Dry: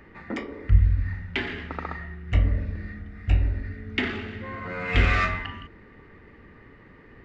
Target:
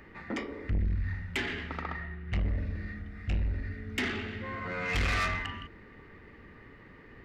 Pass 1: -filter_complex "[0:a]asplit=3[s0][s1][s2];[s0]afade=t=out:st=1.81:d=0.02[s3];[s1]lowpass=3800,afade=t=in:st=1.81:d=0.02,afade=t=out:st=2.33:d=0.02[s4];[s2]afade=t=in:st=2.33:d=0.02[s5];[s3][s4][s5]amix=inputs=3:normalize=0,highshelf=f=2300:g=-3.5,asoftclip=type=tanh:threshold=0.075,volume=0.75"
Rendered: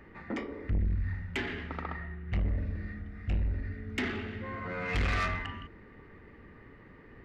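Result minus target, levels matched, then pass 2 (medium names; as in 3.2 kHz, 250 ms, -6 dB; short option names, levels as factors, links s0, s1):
4 kHz band -3.5 dB
-filter_complex "[0:a]asplit=3[s0][s1][s2];[s0]afade=t=out:st=1.81:d=0.02[s3];[s1]lowpass=3800,afade=t=in:st=1.81:d=0.02,afade=t=out:st=2.33:d=0.02[s4];[s2]afade=t=in:st=2.33:d=0.02[s5];[s3][s4][s5]amix=inputs=3:normalize=0,highshelf=f=2300:g=4.5,asoftclip=type=tanh:threshold=0.075,volume=0.75"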